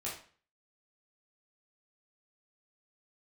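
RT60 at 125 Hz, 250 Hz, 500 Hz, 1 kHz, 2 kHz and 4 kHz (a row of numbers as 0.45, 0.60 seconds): 0.50, 0.45, 0.40, 0.45, 0.40, 0.40 seconds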